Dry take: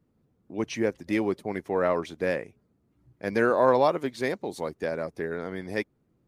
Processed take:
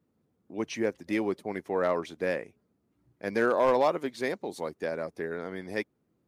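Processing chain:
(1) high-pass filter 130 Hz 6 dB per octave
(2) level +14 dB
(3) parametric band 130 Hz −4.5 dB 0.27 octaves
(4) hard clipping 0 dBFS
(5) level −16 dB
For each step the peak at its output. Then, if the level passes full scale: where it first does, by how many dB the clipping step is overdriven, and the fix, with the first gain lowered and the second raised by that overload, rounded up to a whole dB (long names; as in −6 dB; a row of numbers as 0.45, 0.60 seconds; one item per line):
−8.0, +6.0, +6.0, 0.0, −16.0 dBFS
step 2, 6.0 dB
step 2 +8 dB, step 5 −10 dB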